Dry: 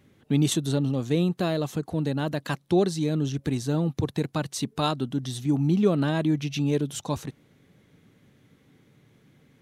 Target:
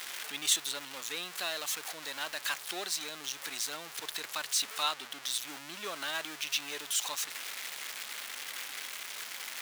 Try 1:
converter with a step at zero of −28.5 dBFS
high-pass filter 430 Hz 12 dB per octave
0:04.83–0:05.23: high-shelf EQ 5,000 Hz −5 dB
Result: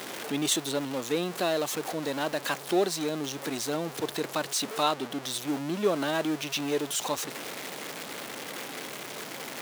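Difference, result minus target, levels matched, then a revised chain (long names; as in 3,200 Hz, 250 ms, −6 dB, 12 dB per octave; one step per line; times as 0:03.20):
500 Hz band +12.5 dB
converter with a step at zero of −28.5 dBFS
high-pass filter 1,500 Hz 12 dB per octave
0:04.83–0:05.23: high-shelf EQ 5,000 Hz −5 dB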